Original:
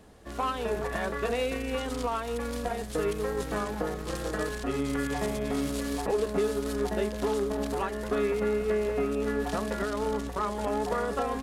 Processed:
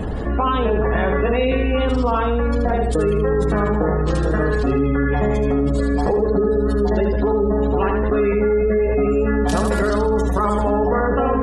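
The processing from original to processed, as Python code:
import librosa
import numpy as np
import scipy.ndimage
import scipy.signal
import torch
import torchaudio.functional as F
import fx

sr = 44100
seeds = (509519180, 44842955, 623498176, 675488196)

y = fx.high_shelf(x, sr, hz=4300.0, db=9.5, at=(8.17, 10.58), fade=0.02)
y = fx.spec_gate(y, sr, threshold_db=-25, keep='strong')
y = fx.low_shelf(y, sr, hz=270.0, db=9.5)
y = fx.echo_feedback(y, sr, ms=78, feedback_pct=33, wet_db=-6.0)
y = fx.env_flatten(y, sr, amount_pct=70)
y = y * librosa.db_to_amplitude(4.0)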